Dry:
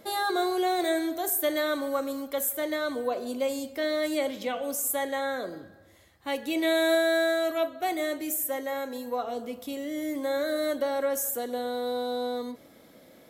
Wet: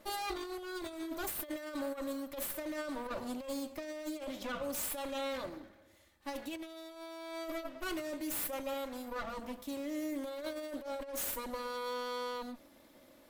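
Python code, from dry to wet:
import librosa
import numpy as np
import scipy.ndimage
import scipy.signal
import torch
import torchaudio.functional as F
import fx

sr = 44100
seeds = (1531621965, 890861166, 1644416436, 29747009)

y = fx.lower_of_two(x, sr, delay_ms=3.4)
y = fx.over_compress(y, sr, threshold_db=-31.0, ratio=-0.5)
y = y * 10.0 ** (-7.5 / 20.0)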